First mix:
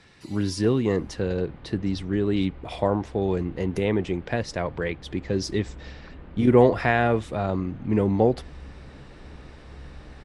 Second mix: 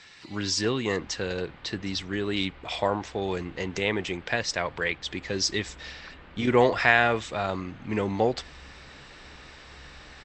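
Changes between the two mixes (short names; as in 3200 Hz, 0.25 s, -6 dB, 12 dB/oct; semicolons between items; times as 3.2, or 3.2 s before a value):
speech: add brick-wall FIR low-pass 8200 Hz; first sound: add air absorption 210 m; master: add tilt shelf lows -8.5 dB, about 810 Hz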